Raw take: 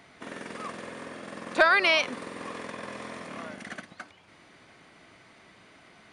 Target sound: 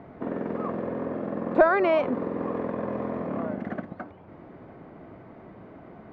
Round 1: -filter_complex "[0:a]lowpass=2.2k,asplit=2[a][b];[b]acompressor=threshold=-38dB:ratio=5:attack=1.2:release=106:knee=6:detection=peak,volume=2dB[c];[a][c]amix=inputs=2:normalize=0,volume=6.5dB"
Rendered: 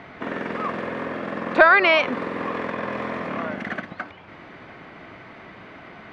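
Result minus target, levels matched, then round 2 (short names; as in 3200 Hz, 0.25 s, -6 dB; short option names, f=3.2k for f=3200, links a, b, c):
2000 Hz band +8.0 dB
-filter_complex "[0:a]lowpass=680,asplit=2[a][b];[b]acompressor=threshold=-38dB:ratio=5:attack=1.2:release=106:knee=6:detection=peak,volume=2dB[c];[a][c]amix=inputs=2:normalize=0,volume=6.5dB"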